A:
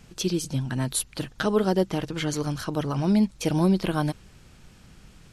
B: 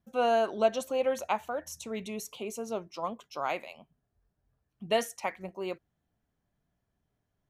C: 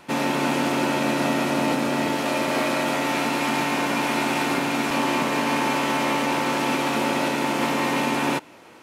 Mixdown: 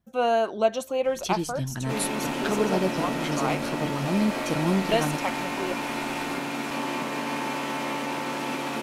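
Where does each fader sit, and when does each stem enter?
−3.5, +3.0, −7.0 decibels; 1.05, 0.00, 1.80 seconds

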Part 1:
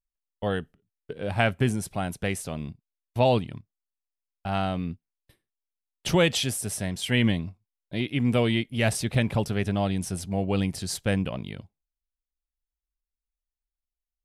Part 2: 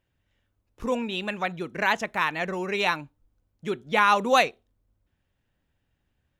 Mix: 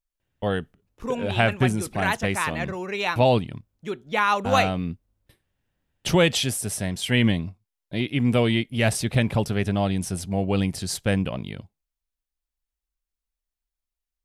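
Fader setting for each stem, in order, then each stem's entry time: +2.5, −1.5 decibels; 0.00, 0.20 seconds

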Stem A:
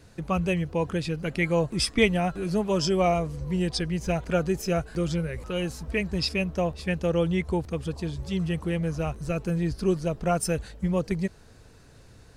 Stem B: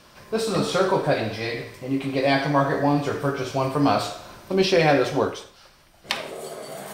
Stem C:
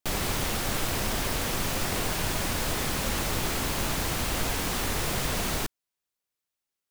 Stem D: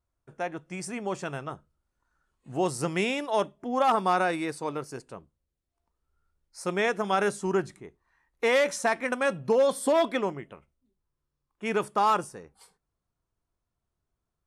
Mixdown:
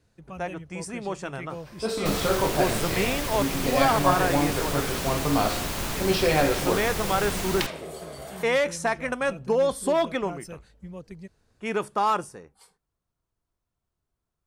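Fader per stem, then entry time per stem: −14.5, −4.0, −1.5, 0.0 decibels; 0.00, 1.50, 2.00, 0.00 seconds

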